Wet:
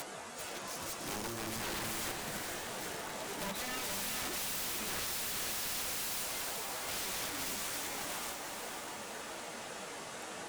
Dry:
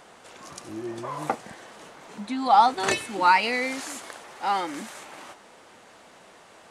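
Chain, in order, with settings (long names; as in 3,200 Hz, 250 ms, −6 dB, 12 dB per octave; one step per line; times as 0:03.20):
high-shelf EQ 7,500 Hz +9.5 dB
notch filter 1,100 Hz, Q 22
in parallel at −1.5 dB: upward compression, threshold −27 dBFS
on the sum: tube saturation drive 19 dB, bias 0.3
time stretch by phase vocoder 1.5×
wrap-around overflow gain 30 dB
feedback delay with all-pass diffusion 451 ms, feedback 50%, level −4 dB
wrong playback speed 25 fps video run at 24 fps
level −4.5 dB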